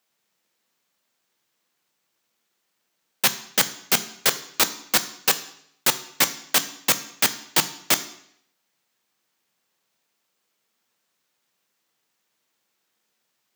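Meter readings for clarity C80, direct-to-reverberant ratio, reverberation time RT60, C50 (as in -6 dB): 17.0 dB, 10.5 dB, 0.70 s, 15.0 dB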